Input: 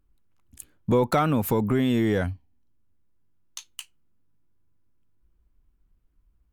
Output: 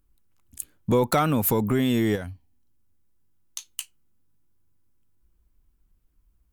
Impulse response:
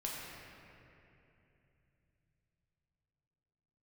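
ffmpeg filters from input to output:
-filter_complex "[0:a]highshelf=f=5200:g=10,asettb=1/sr,asplit=3[s0][s1][s2];[s0]atrim=end=2.154[s3];[s1]atrim=start=2.15:end=3.69,asetpts=PTS-STARTPTS,afade=t=in:d=0.004:c=qsin,afade=t=out:st=1.536:d=0.004:c=qsin,acompressor=threshold=0.0316:ratio=6[s4];[s2]atrim=start=3.686[s5];[s3][s4]acrossfade=d=0.004:c1=hsin:c2=qsin[s6];[s6][s5]acrossfade=d=0.004:c1=qsin:c2=hsin"

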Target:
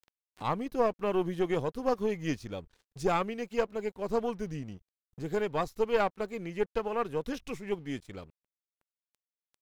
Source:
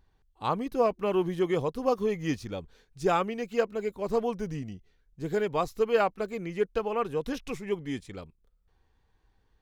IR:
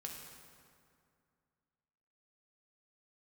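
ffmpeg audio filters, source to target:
-af "aeval=exprs='sgn(val(0))*max(abs(val(0))-0.0015,0)':c=same,aeval=exprs='(tanh(6.31*val(0)+0.55)-tanh(0.55))/6.31':c=same,acompressor=mode=upward:threshold=0.0141:ratio=2.5"

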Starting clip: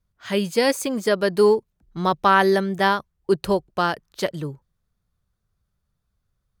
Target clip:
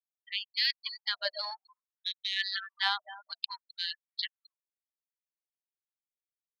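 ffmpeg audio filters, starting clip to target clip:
-filter_complex "[0:a]equalizer=f=4200:t=o:w=0.76:g=13.5,adynamicsmooth=sensitivity=2.5:basefreq=920,aecho=1:1:261|522|783:0.168|0.052|0.0161,afftfilt=real='re*gte(hypot(re,im),0.0794)':imag='im*gte(hypot(re,im),0.0794)':win_size=1024:overlap=0.75,asoftclip=type=tanh:threshold=0.531,equalizer=f=125:t=o:w=1:g=11,equalizer=f=250:t=o:w=1:g=-3,equalizer=f=500:t=o:w=1:g=6,equalizer=f=1000:t=o:w=1:g=-9,equalizer=f=4000:t=o:w=1:g=5,equalizer=f=8000:t=o:w=1:g=-11,acrossover=split=4500[s0][s1];[s1]acompressor=threshold=0.02:ratio=4:attack=1:release=60[s2];[s0][s2]amix=inputs=2:normalize=0,afftfilt=real='re*gte(b*sr/1024,590*pow(1800/590,0.5+0.5*sin(2*PI*0.55*pts/sr)))':imag='im*gte(b*sr/1024,590*pow(1800/590,0.5+0.5*sin(2*PI*0.55*pts/sr)))':win_size=1024:overlap=0.75,volume=0.501"

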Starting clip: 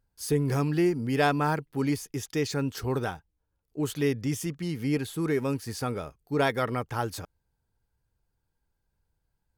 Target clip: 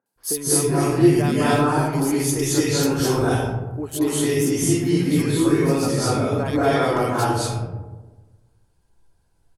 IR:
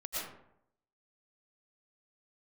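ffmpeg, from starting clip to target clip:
-filter_complex "[0:a]acompressor=threshold=0.0398:ratio=6,asetnsamples=n=441:p=0,asendcmd='4.39 equalizer g 3.5',equalizer=f=12000:t=o:w=1:g=10.5,acrossover=split=210|1800[s0][s1][s2];[s2]adelay=60[s3];[s0]adelay=160[s4];[s4][s1][s3]amix=inputs=3:normalize=0[s5];[1:a]atrim=start_sample=2205,asetrate=23373,aresample=44100[s6];[s5][s6]afir=irnorm=-1:irlink=0,volume=2.24"

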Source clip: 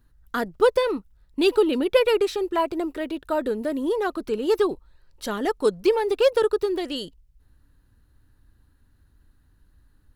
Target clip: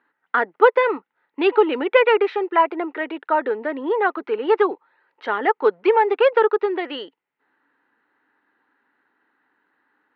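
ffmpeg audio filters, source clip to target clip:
-af "highpass=f=330:w=0.5412,highpass=f=330:w=1.3066,equalizer=f=350:t=q:w=4:g=-3,equalizer=f=590:t=q:w=4:g=-5,equalizer=f=860:t=q:w=4:g=7,equalizer=f=1400:t=q:w=4:g=4,equalizer=f=2000:t=q:w=4:g=7,lowpass=f=2700:w=0.5412,lowpass=f=2700:w=1.3066,volume=1.78"

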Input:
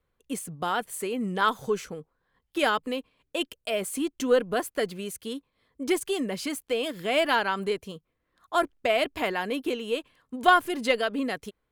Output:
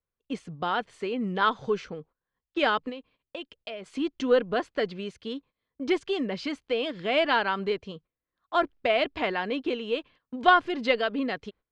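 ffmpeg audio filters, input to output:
-filter_complex "[0:a]lowpass=f=4800:w=0.5412,lowpass=f=4800:w=1.3066,agate=range=0.178:threshold=0.00282:ratio=16:detection=peak,asettb=1/sr,asplit=3[s0][s1][s2];[s0]atrim=end=2.894[s3];[s1]atrim=start=2.89:end=3.86,asetpts=PTS-STARTPTS,afade=t=in:d=0.004:c=qsin,afade=t=out:st=0.966:d=0.004:c=qsin,acompressor=threshold=0.0158:ratio=5[s4];[s2]atrim=start=3.856[s5];[s3][s4]acrossfade=d=0.004:c1=hsin:c2=qsin[s6];[s6][s5]acrossfade=d=0.004:c1=qsin:c2=hsin"

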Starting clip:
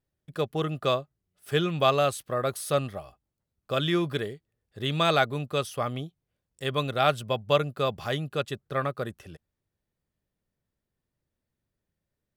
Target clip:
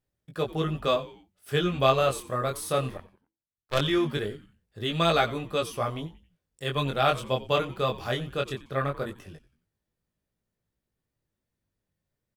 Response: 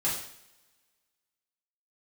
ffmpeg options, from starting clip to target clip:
-filter_complex "[0:a]flanger=delay=17.5:depth=6.2:speed=0.19,asettb=1/sr,asplit=3[s0][s1][s2];[s0]atrim=end=2.974[s3];[s1]atrim=start=2.97:end=3.81,asetpts=PTS-STARTPTS,afade=t=in:d=0.004:c=qsin,afade=t=out:st=0.836:d=0.004:c=qsin,aeval=exprs='0.141*(cos(1*acos(clip(val(0)/0.141,-1,1)))-cos(1*PI/2))+0.0447*(cos(2*acos(clip(val(0)/0.141,-1,1)))-cos(2*PI/2))+0.0224*(cos(7*acos(clip(val(0)/0.141,-1,1)))-cos(7*PI/2))':c=same[s4];[s2]atrim=start=3.806[s5];[s3][s4]acrossfade=d=0.004:c1=hsin:c2=qsin[s6];[s6][s5]acrossfade=d=0.004:c1=qsin:c2=hsin,asplit=4[s7][s8][s9][s10];[s8]adelay=90,afreqshift=-110,volume=0.133[s11];[s9]adelay=180,afreqshift=-220,volume=0.0531[s12];[s10]adelay=270,afreqshift=-330,volume=0.0214[s13];[s7][s11][s12][s13]amix=inputs=4:normalize=0,volume=1.41"

